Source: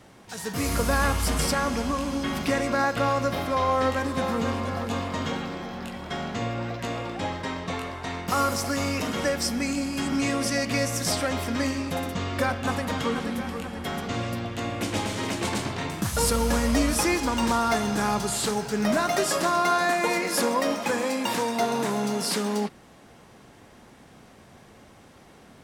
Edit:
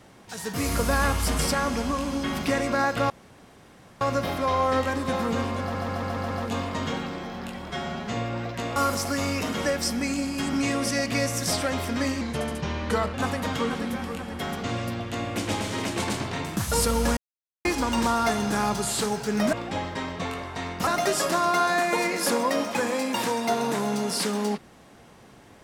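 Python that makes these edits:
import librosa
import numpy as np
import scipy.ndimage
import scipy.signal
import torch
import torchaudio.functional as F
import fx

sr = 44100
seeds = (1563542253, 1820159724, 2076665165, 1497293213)

y = fx.edit(x, sr, fx.insert_room_tone(at_s=3.1, length_s=0.91),
    fx.stutter(start_s=4.7, slice_s=0.14, count=6),
    fx.stretch_span(start_s=6.09, length_s=0.28, factor=1.5),
    fx.move(start_s=7.01, length_s=1.34, to_s=18.98),
    fx.speed_span(start_s=11.8, length_s=0.79, speed=0.85),
    fx.silence(start_s=16.62, length_s=0.48), tone=tone)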